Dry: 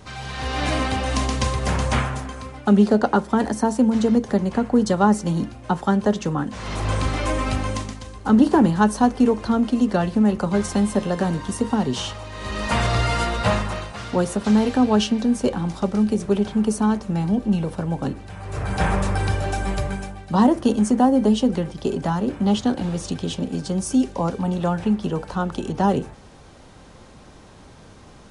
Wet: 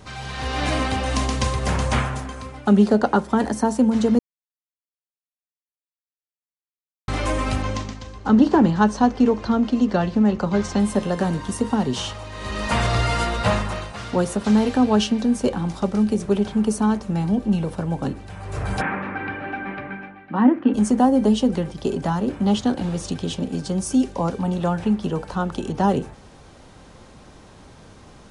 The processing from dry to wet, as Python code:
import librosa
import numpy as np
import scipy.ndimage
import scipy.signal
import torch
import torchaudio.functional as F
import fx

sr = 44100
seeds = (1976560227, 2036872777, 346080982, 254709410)

y = fx.lowpass(x, sr, hz=6700.0, slope=24, at=(7.62, 10.8))
y = fx.cabinet(y, sr, low_hz=270.0, low_slope=12, high_hz=2400.0, hz=(270.0, 420.0, 630.0, 1000.0, 1600.0, 2300.0), db=(10, -7, -9, -4, 3, 4), at=(18.8, 20.73), fade=0.02)
y = fx.edit(y, sr, fx.silence(start_s=4.19, length_s=2.89), tone=tone)